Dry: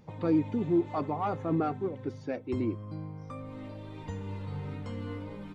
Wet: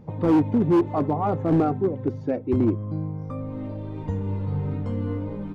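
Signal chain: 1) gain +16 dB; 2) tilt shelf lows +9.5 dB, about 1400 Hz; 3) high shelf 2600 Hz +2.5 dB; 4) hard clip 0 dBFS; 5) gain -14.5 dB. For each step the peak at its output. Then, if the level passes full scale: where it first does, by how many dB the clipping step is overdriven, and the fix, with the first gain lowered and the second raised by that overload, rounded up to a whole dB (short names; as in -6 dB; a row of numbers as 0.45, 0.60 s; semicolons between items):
-1.0, +7.5, +7.5, 0.0, -14.5 dBFS; step 2, 7.5 dB; step 1 +8 dB, step 5 -6.5 dB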